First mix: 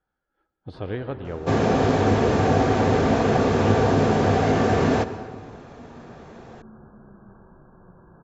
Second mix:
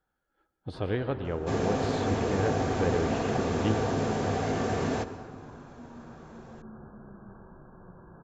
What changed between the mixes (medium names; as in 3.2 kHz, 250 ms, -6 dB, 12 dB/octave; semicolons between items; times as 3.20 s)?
second sound -9.5 dB; master: remove distance through air 84 m